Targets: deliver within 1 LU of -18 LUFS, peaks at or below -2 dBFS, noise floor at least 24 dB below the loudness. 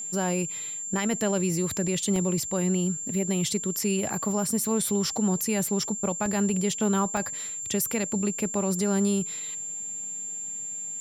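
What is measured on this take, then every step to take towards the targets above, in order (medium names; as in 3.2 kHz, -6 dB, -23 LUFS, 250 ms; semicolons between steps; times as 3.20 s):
dropouts 4; longest dropout 1.8 ms; steady tone 7.3 kHz; tone level -32 dBFS; loudness -27.0 LUFS; peak level -13.5 dBFS; loudness target -18.0 LUFS
-> interpolate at 2.16/5.17/6.26/7.17 s, 1.8 ms; band-stop 7.3 kHz, Q 30; trim +9 dB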